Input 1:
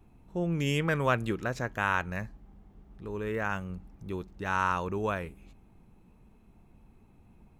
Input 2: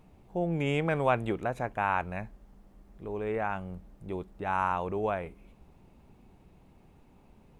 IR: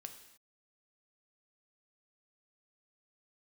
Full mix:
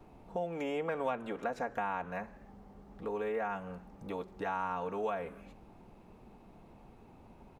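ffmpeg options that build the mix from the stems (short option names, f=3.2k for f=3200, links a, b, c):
-filter_complex "[0:a]volume=-5dB,asplit=2[a][b];[b]volume=-7dB[c];[1:a]equalizer=f=4.8k:w=0.75:g=7,adelay=4.7,volume=-8.5dB,asplit=2[d][e];[e]apad=whole_len=334936[f];[a][f]sidechaincompress=threshold=-43dB:ratio=8:attack=16:release=355[g];[2:a]atrim=start_sample=2205[h];[c][h]afir=irnorm=-1:irlink=0[i];[g][d][i]amix=inputs=3:normalize=0,acrossover=split=410|1600[j][k][l];[j]acompressor=threshold=-49dB:ratio=4[m];[k]acompressor=threshold=-46dB:ratio=4[n];[l]acompressor=threshold=-53dB:ratio=4[o];[m][n][o]amix=inputs=3:normalize=0,equalizer=f=690:w=0.42:g=11"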